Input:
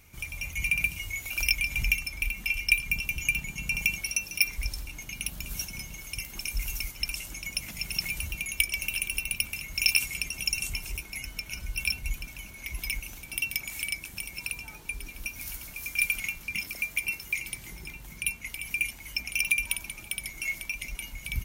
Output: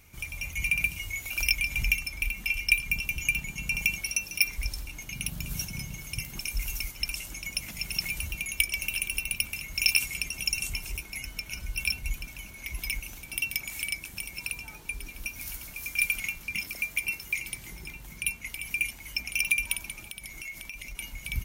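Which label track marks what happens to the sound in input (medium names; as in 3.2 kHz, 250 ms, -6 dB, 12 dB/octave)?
5.120000	6.400000	peaking EQ 130 Hz +10 dB 1.3 oct
20.090000	20.980000	compression, threshold -36 dBFS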